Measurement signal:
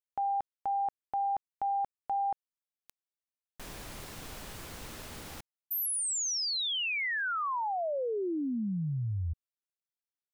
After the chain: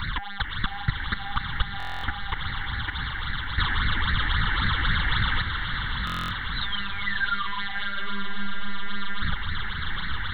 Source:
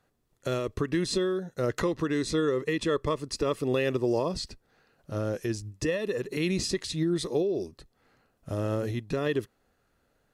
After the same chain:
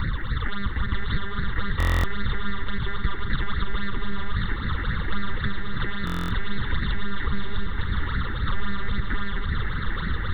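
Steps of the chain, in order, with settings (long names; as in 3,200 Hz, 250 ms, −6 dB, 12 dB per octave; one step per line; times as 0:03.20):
compressor on every frequency bin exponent 0.2
one-pitch LPC vocoder at 8 kHz 200 Hz
bit-depth reduction 12 bits, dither none
downward compressor, threshold −22 dBFS
all-pass phaser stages 8, 3.7 Hz, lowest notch 140–1,000 Hz
parametric band 370 Hz −13.5 dB 1.4 octaves
phaser with its sweep stopped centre 2,500 Hz, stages 6
on a send: feedback delay with all-pass diffusion 688 ms, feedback 44%, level −8 dB
on the sum: buffer that repeats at 0:01.78/0:06.05, samples 1,024, times 10
level +7 dB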